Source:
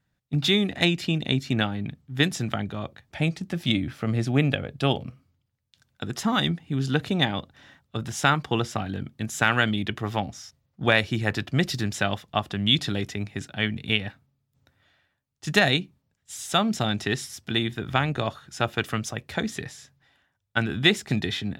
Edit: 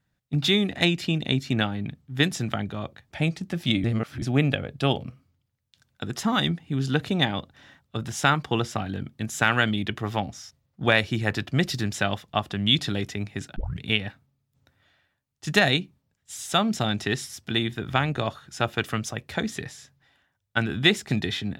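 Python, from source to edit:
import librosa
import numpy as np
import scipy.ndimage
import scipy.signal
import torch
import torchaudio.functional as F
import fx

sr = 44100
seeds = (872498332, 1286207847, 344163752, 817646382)

y = fx.edit(x, sr, fx.reverse_span(start_s=3.84, length_s=0.38),
    fx.tape_start(start_s=13.56, length_s=0.25), tone=tone)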